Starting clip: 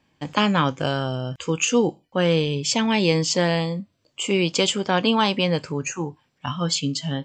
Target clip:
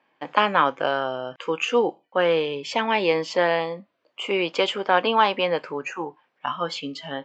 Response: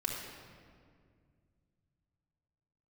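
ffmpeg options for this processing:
-af "highpass=510,lowpass=2100,volume=4.5dB"

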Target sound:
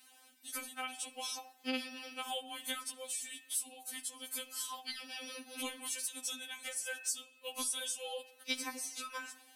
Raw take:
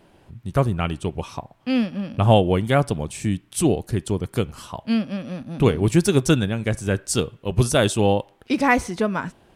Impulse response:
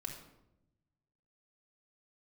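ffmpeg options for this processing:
-filter_complex "[0:a]aderivative,bandreject=frequency=95.76:width_type=h:width=4,bandreject=frequency=191.52:width_type=h:width=4,bandreject=frequency=287.28:width_type=h:width=4,bandreject=frequency=383.04:width_type=h:width=4,bandreject=frequency=478.8:width_type=h:width=4,bandreject=frequency=574.56:width_type=h:width=4,bandreject=frequency=670.32:width_type=h:width=4,bandreject=frequency=766.08:width_type=h:width=4,bandreject=frequency=861.84:width_type=h:width=4,bandreject=frequency=957.6:width_type=h:width=4,bandreject=frequency=1053.36:width_type=h:width=4,bandreject=frequency=1149.12:width_type=h:width=4,bandreject=frequency=1244.88:width_type=h:width=4,bandreject=frequency=1340.64:width_type=h:width=4,bandreject=frequency=1436.4:width_type=h:width=4,bandreject=frequency=1532.16:width_type=h:width=4,bandreject=frequency=1627.92:width_type=h:width=4,bandreject=frequency=1723.68:width_type=h:width=4,bandreject=frequency=1819.44:width_type=h:width=4,bandreject=frequency=1915.2:width_type=h:width=4,bandreject=frequency=2010.96:width_type=h:width=4,bandreject=frequency=2106.72:width_type=h:width=4,bandreject=frequency=2202.48:width_type=h:width=4,bandreject=frequency=2298.24:width_type=h:width=4,bandreject=frequency=2394:width_type=h:width=4,bandreject=frequency=2489.76:width_type=h:width=4,bandreject=frequency=2585.52:width_type=h:width=4,bandreject=frequency=2681.28:width_type=h:width=4,bandreject=frequency=2777.04:width_type=h:width=4,bandreject=frequency=2872.8:width_type=h:width=4,bandreject=frequency=2968.56:width_type=h:width=4,bandreject=frequency=3064.32:width_type=h:width=4,acompressor=threshold=-44dB:ratio=8,asplit=2[link_01][link_02];[1:a]atrim=start_sample=2205,asetrate=43659,aresample=44100[link_03];[link_02][link_03]afir=irnorm=-1:irlink=0,volume=-9.5dB[link_04];[link_01][link_04]amix=inputs=2:normalize=0,afftfilt=real='re*3.46*eq(mod(b,12),0)':imag='im*3.46*eq(mod(b,12),0)':win_size=2048:overlap=0.75,volume=9dB"

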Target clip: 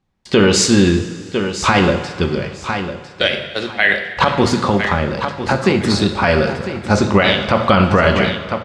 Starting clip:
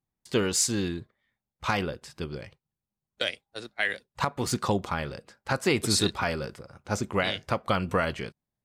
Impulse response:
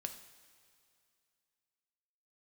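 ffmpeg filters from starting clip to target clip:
-filter_complex "[0:a]lowpass=4400,asettb=1/sr,asplit=3[link_01][link_02][link_03];[link_01]atrim=end=4.464[link_04];[link_02]atrim=start=4.46:end=6.24,asetpts=PTS-STARTPTS,afade=type=in:duration=0.004:curve=qsin,afade=type=out:start_time=1.776:duration=0.004:curve=qsin,acrossover=split=200|850[link_05][link_06][link_07];[link_05]acompressor=threshold=-36dB:ratio=4[link_08];[link_06]acompressor=threshold=-34dB:ratio=4[link_09];[link_07]acompressor=threshold=-39dB:ratio=4[link_10];[link_08][link_09][link_10]amix=inputs=3:normalize=0[link_11];[link_03]atrim=start=6.236[link_12];[link_04][link_11]acrossfade=duration=0.004:curve1=hsin:curve2=qsin[link_13];[link_13][link_12]acrossfade=duration=0.004:curve1=qsin:curve2=hsin,aecho=1:1:1002|2004|3006:0.282|0.062|0.0136[link_14];[1:a]atrim=start_sample=2205[link_15];[link_14][link_15]afir=irnorm=-1:irlink=0,alimiter=level_in=20.5dB:limit=-1dB:release=50:level=0:latency=1,volume=-1dB"

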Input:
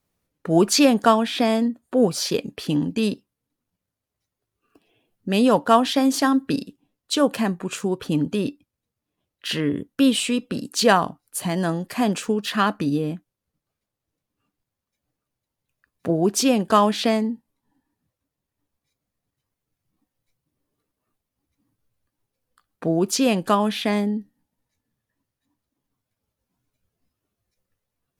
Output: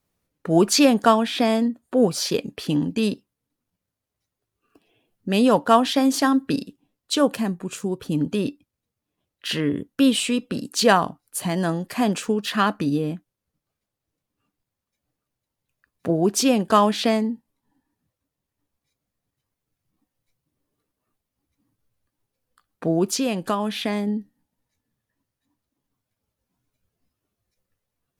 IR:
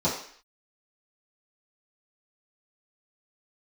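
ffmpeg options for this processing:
-filter_complex "[0:a]asettb=1/sr,asplit=3[link_01][link_02][link_03];[link_01]atrim=end=7.354[link_04];[link_02]atrim=start=7.35:end=8.21,asetpts=PTS-STARTPTS,afade=type=in:duration=0.004:curve=qsin,afade=type=out:start_time=0.856:duration=0.004:curve=qsin,equalizer=frequency=1500:width=0.31:gain=-6.5[link_05];[link_03]atrim=start=8.206[link_06];[link_04][link_05]acrossfade=duration=0.004:curve1=hsin:curve2=qsin[link_07];[link_07][link_06]acrossfade=duration=0.004:curve1=qsin:curve2=hsin,asettb=1/sr,asplit=3[link_08][link_09][link_10];[link_08]atrim=end=23.094[link_11];[link_09]atrim=start=23.09:end=24.08,asetpts=PTS-STARTPTS,afade=type=in:duration=0.004:curve=qsin,afade=type=out:start_time=0.986:duration=0.004:curve=qsin,acompressor=threshold=-23dB:ratio=2[link_12];[link_10]atrim=start=24.076[link_13];[link_11][link_12]acrossfade=duration=0.004:curve1=hsin:curve2=qsin[link_14];[link_14][link_13]acrossfade=duration=0.004:curve1=qsin:curve2=hsin"

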